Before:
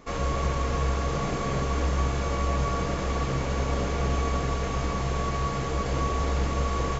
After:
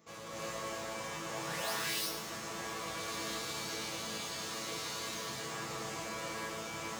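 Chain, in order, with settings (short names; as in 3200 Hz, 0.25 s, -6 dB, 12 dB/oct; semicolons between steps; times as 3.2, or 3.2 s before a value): 1.28–1.74 painted sound rise 470–6200 Hz -26 dBFS; 2.75–5.11 fifteen-band EQ 160 Hz -6 dB, 630 Hz -4 dB, 4000 Hz +10 dB; overloaded stage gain 32.5 dB; HPF 110 Hz 12 dB/oct; high shelf 5400 Hz +11.5 dB; resonator bank A2 fifth, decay 0.31 s; split-band echo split 310 Hz, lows 0.261 s, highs 0.11 s, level -10 dB; non-linear reverb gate 0.39 s rising, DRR -7 dB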